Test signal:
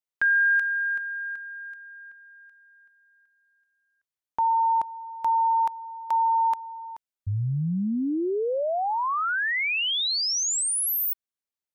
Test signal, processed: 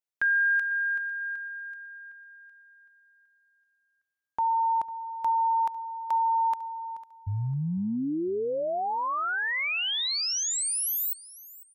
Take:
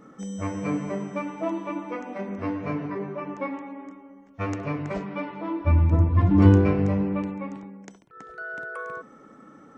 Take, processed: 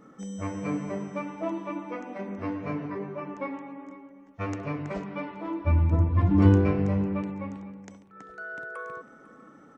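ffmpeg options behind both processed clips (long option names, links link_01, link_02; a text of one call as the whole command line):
ffmpeg -i in.wav -af "aecho=1:1:500|1000:0.112|0.0303,volume=-3dB" out.wav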